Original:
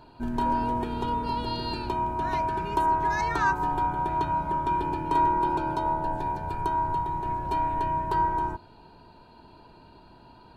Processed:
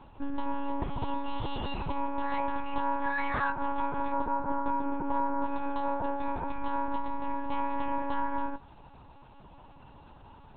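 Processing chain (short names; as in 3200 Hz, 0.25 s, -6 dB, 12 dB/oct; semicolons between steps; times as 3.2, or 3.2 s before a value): 4.12–5.46 resonant high shelf 1800 Hz -10 dB, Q 1.5; compressor, threshold -26 dBFS, peak gain reduction 8.5 dB; monotone LPC vocoder at 8 kHz 280 Hz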